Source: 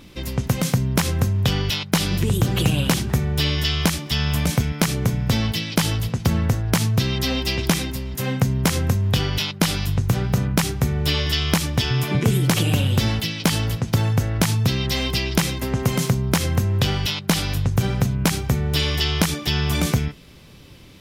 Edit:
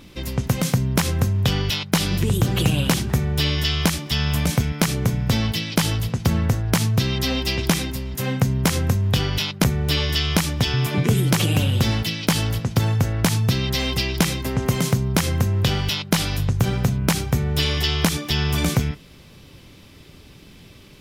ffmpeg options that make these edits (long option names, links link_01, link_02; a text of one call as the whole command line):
ffmpeg -i in.wav -filter_complex "[0:a]asplit=2[link_01][link_02];[link_01]atrim=end=9.642[link_03];[link_02]atrim=start=10.808[link_04];[link_03][link_04]acrossfade=duration=0.004:curve1=hsin:curve2=hsin" out.wav